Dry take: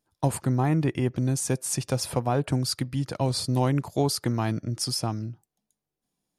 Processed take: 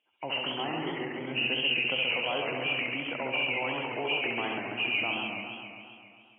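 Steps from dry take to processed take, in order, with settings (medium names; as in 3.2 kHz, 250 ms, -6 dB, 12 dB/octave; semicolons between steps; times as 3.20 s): knee-point frequency compression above 1.9 kHz 4:1; peak limiter -22 dBFS, peak gain reduction 10.5 dB; high-pass 420 Hz 12 dB/octave; flutter echo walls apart 11.8 m, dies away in 0.83 s; modulated delay 135 ms, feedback 69%, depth 178 cents, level -4.5 dB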